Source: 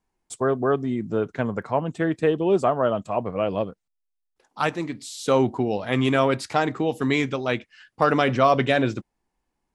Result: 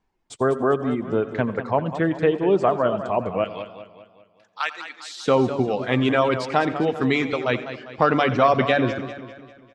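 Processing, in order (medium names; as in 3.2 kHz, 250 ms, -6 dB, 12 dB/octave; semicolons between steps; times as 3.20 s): 3.44–5.19 s: high-pass 1.4 kHz 12 dB/octave; reverb removal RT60 0.77 s; low-pass 4.7 kHz 12 dB/octave; in parallel at -2 dB: compression, threshold -29 dBFS, peak gain reduction 15 dB; on the sum: echo from a far wall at 15 m, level -18 dB; on a send at -18 dB: reverberation RT60 0.60 s, pre-delay 81 ms; on the sum: modulated delay 199 ms, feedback 48%, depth 98 cents, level -11.5 dB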